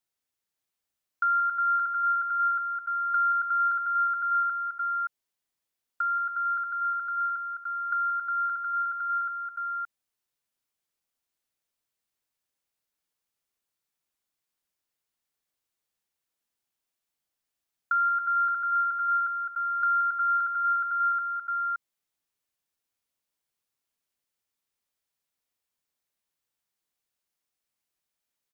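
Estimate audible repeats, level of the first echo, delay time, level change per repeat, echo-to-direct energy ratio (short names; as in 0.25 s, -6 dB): 3, -11.0 dB, 0.176 s, no steady repeat, -4.0 dB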